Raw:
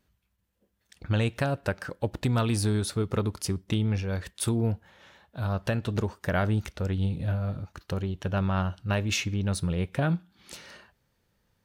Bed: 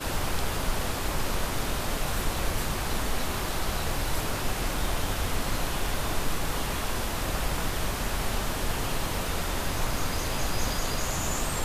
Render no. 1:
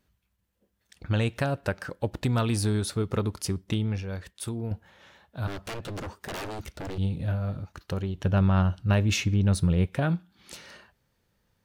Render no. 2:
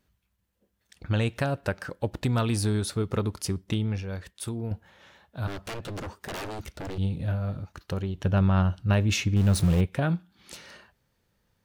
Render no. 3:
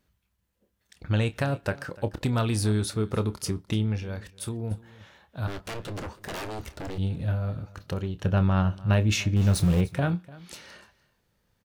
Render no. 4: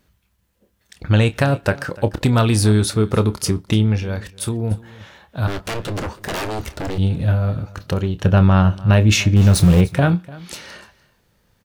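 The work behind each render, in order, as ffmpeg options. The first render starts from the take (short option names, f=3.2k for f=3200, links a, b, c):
-filter_complex "[0:a]asettb=1/sr,asplit=3[a][b][c];[a]atrim=end=5.474[d];[b]atrim=start=5.47:end=6.98,asetpts=PTS-STARTPTS,afade=t=in:d=0.004:c=qsin,afade=t=out:st=1.506:d=0.004:c=qsin,aeval=exprs='0.0316*(abs(mod(val(0)/0.0316+3,4)-2)-1)':c=same[e];[c]atrim=start=6.976[f];[d][e]acrossfade=d=0.004:c1=hsin:c2=qsin[g];[g][f]acrossfade=d=0.004:c1=qsin:c2=hsin,asettb=1/sr,asplit=3[h][i][j];[h]atrim=end=8.174[k];[i]atrim=start=8.17:end=9.87,asetpts=PTS-STARTPTS,afade=t=in:d=0.004:c=qsin,afade=t=out:st=1.696:d=0.004:c=qsin,lowshelf=f=320:g=6.5[l];[j]atrim=start=9.866[m];[k][l]acrossfade=d=0.004:c1=hsin:c2=qsin[n];[n][m]acrossfade=d=0.004:c1=qsin:c2=hsin,asplit=2[o][p];[o]atrim=end=4.71,asetpts=PTS-STARTPTS,afade=t=out:st=3.67:d=1.04:c=qua:silence=0.446684[q];[p]atrim=start=4.71,asetpts=PTS-STARTPTS,afade=t=in:d=0.004:c=hsin:silence=0.446684[r];[q][r]concat=n=2:v=0:a=1"
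-filter_complex "[0:a]asettb=1/sr,asplit=3[a][b][c];[a]atrim=end=9.364[d];[b]atrim=start=9.36:end=9.81,asetpts=PTS-STARTPTS,afade=t=in:d=0.004:c=qsin,afade=t=out:st=0.446:d=0.004:c=qsin,aeval=exprs='val(0)+0.5*0.0316*sgn(val(0))':c=same[e];[c]atrim=start=9.806[f];[d][e]acrossfade=d=0.004:c1=hsin:c2=qsin[g];[g][f]acrossfade=d=0.004:c1=qsin:c2=hsin"
-filter_complex "[0:a]asplit=2[a][b];[b]adelay=28,volume=-13dB[c];[a][c]amix=inputs=2:normalize=0,aecho=1:1:296:0.0944"
-af "volume=10dB,alimiter=limit=-2dB:level=0:latency=1"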